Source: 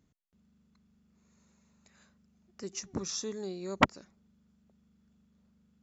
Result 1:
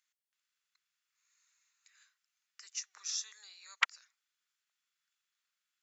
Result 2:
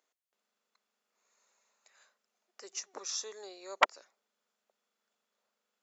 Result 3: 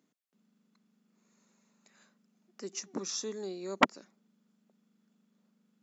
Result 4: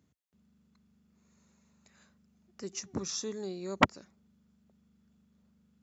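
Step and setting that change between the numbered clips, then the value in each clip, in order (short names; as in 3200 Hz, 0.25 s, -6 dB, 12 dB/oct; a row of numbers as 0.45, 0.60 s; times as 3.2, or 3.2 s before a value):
HPF, cutoff: 1500, 520, 210, 60 Hz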